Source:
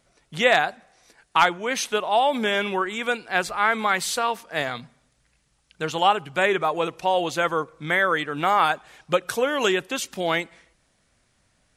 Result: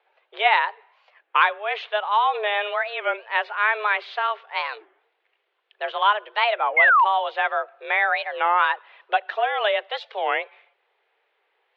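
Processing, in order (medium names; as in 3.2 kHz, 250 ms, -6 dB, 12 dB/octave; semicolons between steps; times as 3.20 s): mistuned SSB +210 Hz 220–3200 Hz; painted sound fall, 6.77–7.05 s, 870–2500 Hz -15 dBFS; warped record 33 1/3 rpm, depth 250 cents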